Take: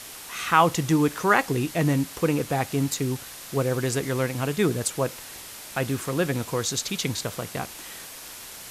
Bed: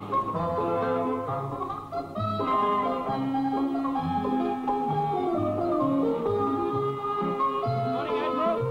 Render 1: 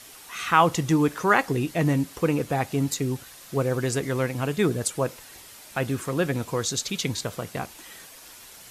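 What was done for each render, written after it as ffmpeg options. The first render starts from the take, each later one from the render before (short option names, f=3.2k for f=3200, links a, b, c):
-af "afftdn=nr=7:nf=-41"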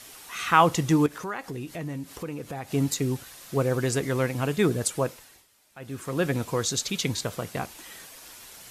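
-filter_complex "[0:a]asettb=1/sr,asplit=3[a][b][c];[a]atrim=end=1.064[d];[b]atrim=start=1.06:end=2.71,asetpts=PTS-STARTPTS,afade=t=in:d=0.004:c=qsin,afade=t=out:st=1.646:d=0.004:c=qsin,acompressor=threshold=-36dB:ratio=2.5:attack=3.2:release=140:knee=1:detection=peak[e];[c]atrim=start=2.706[f];[d][e]acrossfade=d=0.004:c1=hsin:c2=qsin[g];[g][f]acrossfade=d=0.004:c1=qsin:c2=hsin,asplit=3[h][i][j];[h]atrim=end=5.47,asetpts=PTS-STARTPTS,afade=t=out:st=4.98:d=0.49:silence=0.133352[k];[i]atrim=start=5.47:end=5.79,asetpts=PTS-STARTPTS,volume=-17.5dB[l];[j]atrim=start=5.79,asetpts=PTS-STARTPTS,afade=t=in:d=0.49:silence=0.133352[m];[k][l][m]concat=n=3:v=0:a=1"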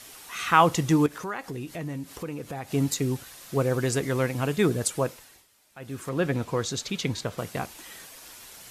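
-filter_complex "[0:a]asettb=1/sr,asplit=3[a][b][c];[a]atrim=end=6.094[d];[b]atrim=start=6.09:end=7.38,asetpts=PTS-STARTPTS,afade=t=in:d=0.004:c=qsin,afade=t=out:st=1.286:d=0.004:c=qsin,highshelf=f=5.5k:g=-10[e];[c]atrim=start=7.376[f];[d][e]acrossfade=d=0.004:c1=hsin:c2=qsin[g];[g][f]acrossfade=d=0.004:c1=qsin:c2=hsin"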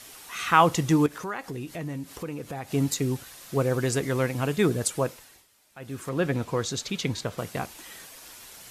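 -af anull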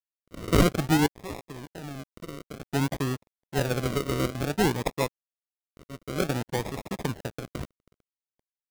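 -af "acrusher=samples=41:mix=1:aa=0.000001:lfo=1:lforange=24.6:lforate=0.55,aeval=exprs='sgn(val(0))*max(abs(val(0))-0.0133,0)':c=same"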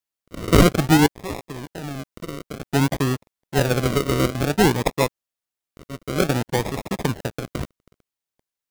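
-af "volume=7dB,alimiter=limit=-2dB:level=0:latency=1"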